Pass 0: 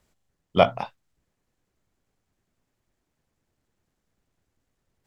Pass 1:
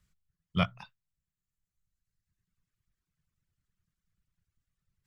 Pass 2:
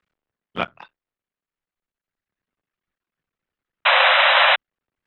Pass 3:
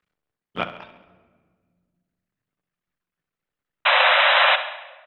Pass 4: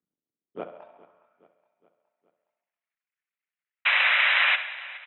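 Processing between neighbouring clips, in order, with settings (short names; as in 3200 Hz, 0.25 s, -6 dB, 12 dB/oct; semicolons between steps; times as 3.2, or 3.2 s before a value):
reverb removal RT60 1.6 s; EQ curve 180 Hz 0 dB, 250 Hz -15 dB, 810 Hz -20 dB, 1200 Hz -6 dB
cycle switcher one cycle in 3, muted; painted sound noise, 3.85–4.56, 510–4000 Hz -22 dBFS; three-band isolator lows -20 dB, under 280 Hz, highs -22 dB, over 3500 Hz; gain +9 dB
on a send: feedback echo 68 ms, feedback 57%, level -13 dB; on the sum: shoebox room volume 2200 m³, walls mixed, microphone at 0.41 m; gain -2 dB
band-pass sweep 260 Hz -> 2200 Hz, 0.32–1.63; feedback echo 0.416 s, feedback 56%, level -20 dB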